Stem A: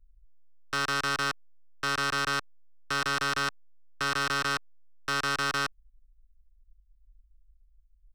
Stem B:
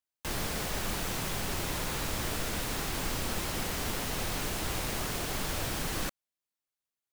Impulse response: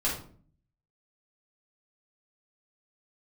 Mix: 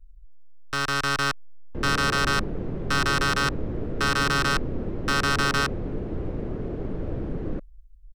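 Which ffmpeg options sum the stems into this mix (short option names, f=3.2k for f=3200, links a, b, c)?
-filter_complex "[0:a]lowshelf=f=130:g=10.5,volume=0.5dB[a];[1:a]lowpass=1.2k,lowshelf=f=610:t=q:w=1.5:g=11,adelay=1500,volume=-9dB[b];[a][b]amix=inputs=2:normalize=0,dynaudnorm=f=140:g=13:m=4dB"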